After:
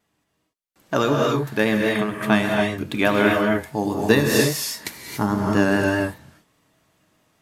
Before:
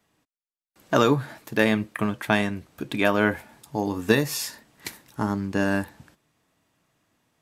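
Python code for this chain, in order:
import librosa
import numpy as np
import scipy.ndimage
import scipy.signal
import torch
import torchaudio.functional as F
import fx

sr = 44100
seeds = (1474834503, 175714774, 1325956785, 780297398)

y = fx.rev_gated(x, sr, seeds[0], gate_ms=310, shape='rising', drr_db=0.0)
y = fx.rider(y, sr, range_db=4, speed_s=2.0)
y = fx.vibrato(y, sr, rate_hz=4.9, depth_cents=30.0)
y = F.gain(torch.from_numpy(y), 1.5).numpy()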